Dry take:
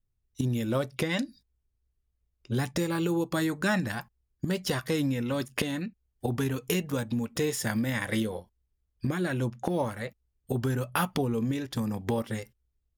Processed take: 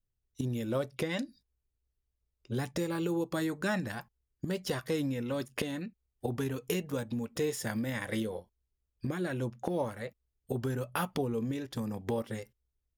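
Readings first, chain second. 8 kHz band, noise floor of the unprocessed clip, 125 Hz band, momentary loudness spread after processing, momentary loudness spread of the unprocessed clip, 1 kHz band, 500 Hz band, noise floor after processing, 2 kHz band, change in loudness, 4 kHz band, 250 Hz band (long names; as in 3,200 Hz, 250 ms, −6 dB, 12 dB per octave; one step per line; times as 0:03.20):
−6.0 dB, −78 dBFS, −6.0 dB, 8 LU, 8 LU, −5.0 dB, −2.5 dB, −84 dBFS, −6.0 dB, −4.5 dB, −6.0 dB, −5.0 dB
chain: parametric band 480 Hz +4 dB 1.1 octaves
level −6 dB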